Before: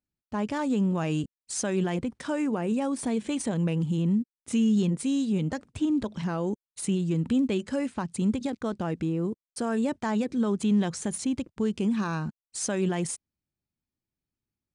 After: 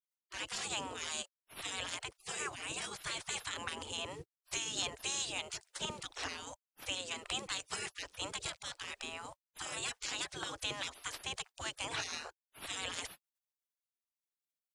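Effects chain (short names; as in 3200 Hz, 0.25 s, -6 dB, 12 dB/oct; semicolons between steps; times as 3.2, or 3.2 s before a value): spectral gate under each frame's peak -30 dB weak; gain +9.5 dB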